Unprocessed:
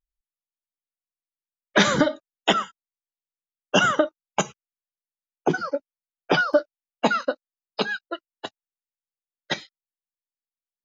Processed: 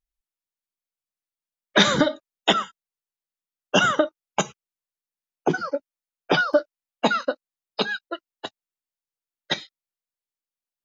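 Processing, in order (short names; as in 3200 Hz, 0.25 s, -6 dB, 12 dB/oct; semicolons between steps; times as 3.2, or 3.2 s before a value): dynamic EQ 3700 Hz, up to +7 dB, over -46 dBFS, Q 8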